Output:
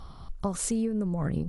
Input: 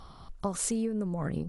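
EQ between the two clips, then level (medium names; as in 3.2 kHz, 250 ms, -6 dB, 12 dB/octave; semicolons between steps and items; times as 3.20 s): bass shelf 170 Hz +7.5 dB; 0.0 dB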